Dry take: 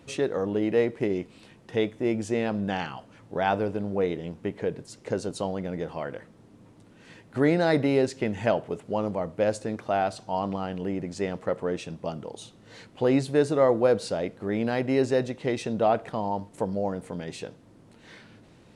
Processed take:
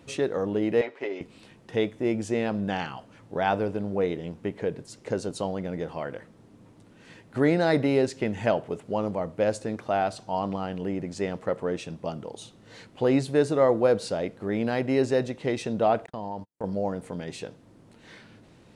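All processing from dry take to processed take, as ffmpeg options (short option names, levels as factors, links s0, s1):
-filter_complex "[0:a]asettb=1/sr,asplit=3[s0][s1][s2];[s0]atrim=end=0.814[s3];[s1]atrim=start=0.81:end=1.21,asetpts=PTS-STARTPTS,afade=t=in:d=0.004:c=qsin,afade=t=out:st=0.396:d=0.004:c=qsin,highpass=570,lowpass=4300,aecho=1:1:7.3:0.64,atrim=end_sample=17640[s4];[s2]atrim=start=1.206[s5];[s3][s4]acrossfade=d=0.004:c1=hsin:c2=qsin[s6];[s6][s5]acrossfade=d=0.004:c1=qsin:c2=hsin,asettb=1/sr,asplit=3[s7][s8][s9];[s7]atrim=end=16.064[s10];[s8]atrim=start=16.06:end=16.64,asetpts=PTS-STARTPTS,afade=t=in:d=0.004:c=qsin,afade=t=out:st=0.576:d=0.004:c=qsin,acompressor=threshold=0.0251:ratio=2.5:attack=3.2:release=140:knee=1:detection=peak,agate=range=0.00501:threshold=0.0112:ratio=16:release=100:detection=peak[s11];[s9]atrim=start=16.636[s12];[s10][s11]acrossfade=d=0.004:c1=hsin:c2=qsin[s13];[s13][s12]acrossfade=d=0.004:c1=qsin:c2=hsin"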